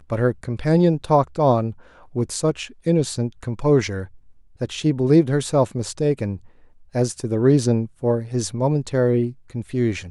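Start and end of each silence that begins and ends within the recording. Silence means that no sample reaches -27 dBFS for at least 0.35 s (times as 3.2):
1.7–2.16
4.04–4.61
6.35–6.95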